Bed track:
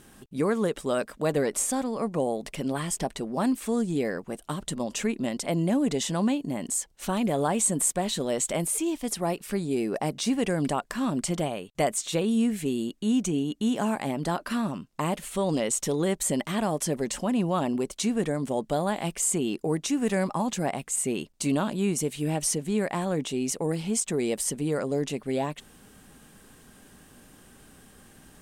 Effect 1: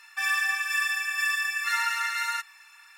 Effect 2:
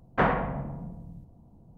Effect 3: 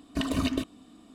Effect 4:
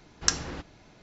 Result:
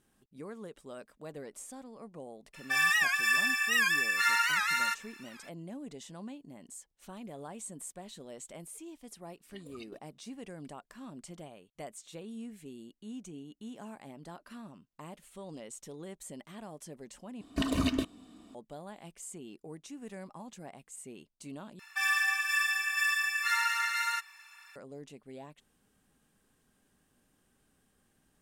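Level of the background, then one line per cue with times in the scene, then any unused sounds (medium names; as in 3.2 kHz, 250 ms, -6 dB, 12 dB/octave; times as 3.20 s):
bed track -19 dB
2.53 s: add 1 -0.5 dB, fades 0.02 s + warped record 78 rpm, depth 160 cents
9.35 s: add 3 -13 dB + spectral noise reduction 19 dB
17.41 s: replace with 3 -1.5 dB
21.79 s: replace with 1 -2.5 dB
not used: 2, 4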